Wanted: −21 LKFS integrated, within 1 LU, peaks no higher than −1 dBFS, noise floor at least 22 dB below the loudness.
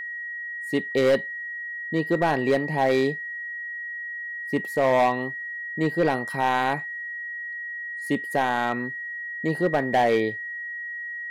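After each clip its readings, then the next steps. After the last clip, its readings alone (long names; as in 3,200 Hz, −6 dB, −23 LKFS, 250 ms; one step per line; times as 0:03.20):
share of clipped samples 1.0%; peaks flattened at −14.5 dBFS; interfering tone 1,900 Hz; level of the tone −31 dBFS; integrated loudness −25.5 LKFS; sample peak −14.5 dBFS; target loudness −21.0 LKFS
→ clipped peaks rebuilt −14.5 dBFS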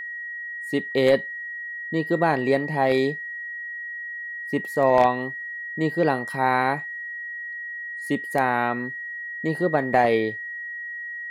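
share of clipped samples 0.0%; interfering tone 1,900 Hz; level of the tone −31 dBFS
→ notch filter 1,900 Hz, Q 30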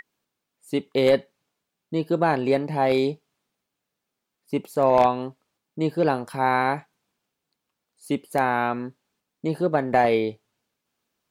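interfering tone none found; integrated loudness −23.5 LKFS; sample peak −5.0 dBFS; target loudness −21.0 LKFS
→ level +2.5 dB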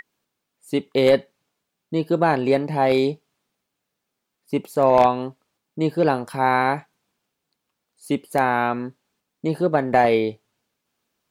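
integrated loudness −21.0 LKFS; sample peak −2.5 dBFS; background noise floor −80 dBFS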